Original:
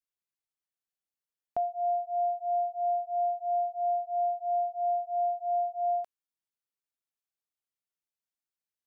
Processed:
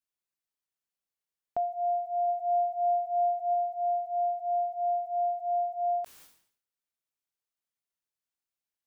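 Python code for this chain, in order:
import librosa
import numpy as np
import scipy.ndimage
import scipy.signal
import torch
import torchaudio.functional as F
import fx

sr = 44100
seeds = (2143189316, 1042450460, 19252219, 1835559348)

y = fx.low_shelf(x, sr, hz=460.0, db=7.0, at=(2.27, 3.53), fade=0.02)
y = fx.sustainer(y, sr, db_per_s=98.0)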